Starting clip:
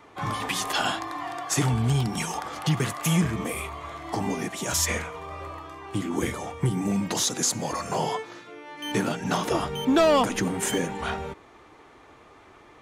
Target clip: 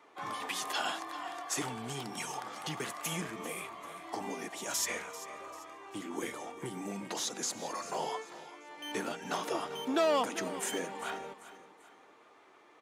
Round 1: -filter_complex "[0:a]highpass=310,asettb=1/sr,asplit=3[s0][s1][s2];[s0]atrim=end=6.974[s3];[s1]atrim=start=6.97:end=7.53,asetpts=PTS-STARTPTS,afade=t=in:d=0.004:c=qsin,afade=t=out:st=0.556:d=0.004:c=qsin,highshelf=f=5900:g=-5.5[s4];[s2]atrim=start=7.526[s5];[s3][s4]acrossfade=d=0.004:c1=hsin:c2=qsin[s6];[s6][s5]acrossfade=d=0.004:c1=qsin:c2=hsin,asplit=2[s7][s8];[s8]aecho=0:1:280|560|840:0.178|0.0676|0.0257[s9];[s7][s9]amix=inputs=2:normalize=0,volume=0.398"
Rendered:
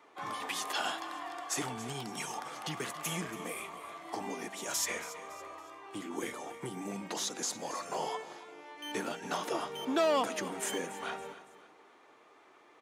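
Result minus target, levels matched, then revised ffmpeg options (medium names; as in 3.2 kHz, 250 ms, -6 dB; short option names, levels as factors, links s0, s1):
echo 112 ms early
-filter_complex "[0:a]highpass=310,asettb=1/sr,asplit=3[s0][s1][s2];[s0]atrim=end=6.974[s3];[s1]atrim=start=6.97:end=7.53,asetpts=PTS-STARTPTS,afade=t=in:d=0.004:c=qsin,afade=t=out:st=0.556:d=0.004:c=qsin,highshelf=f=5900:g=-5.5[s4];[s2]atrim=start=7.526[s5];[s3][s4]acrossfade=d=0.004:c1=hsin:c2=qsin[s6];[s6][s5]acrossfade=d=0.004:c1=qsin:c2=hsin,asplit=2[s7][s8];[s8]aecho=0:1:392|784|1176:0.178|0.0676|0.0257[s9];[s7][s9]amix=inputs=2:normalize=0,volume=0.398"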